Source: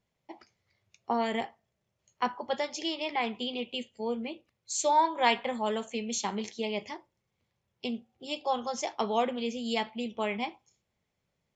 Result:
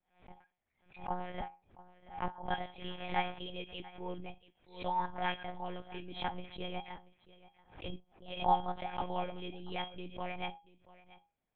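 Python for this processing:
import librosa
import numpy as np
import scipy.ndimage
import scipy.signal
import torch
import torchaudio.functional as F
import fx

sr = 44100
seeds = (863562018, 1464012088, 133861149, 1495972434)

y = fx.block_float(x, sr, bits=3, at=(2.82, 3.4))
y = fx.rider(y, sr, range_db=10, speed_s=2.0)
y = fx.comb_fb(y, sr, f0_hz=820.0, decay_s=0.21, harmonics='all', damping=0.0, mix_pct=90)
y = fx.low_shelf(y, sr, hz=420.0, db=11.5, at=(1.39, 2.31))
y = fx.lpc_monotone(y, sr, seeds[0], pitch_hz=180.0, order=8)
y = scipy.signal.sosfilt(scipy.signal.butter(2, 2800.0, 'lowpass', fs=sr, output='sos'), y)
y = y + 10.0 ** (-19.5 / 20.0) * np.pad(y, (int(683 * sr / 1000.0), 0))[:len(y)]
y = fx.pre_swell(y, sr, db_per_s=140.0)
y = y * librosa.db_to_amplitude(8.0)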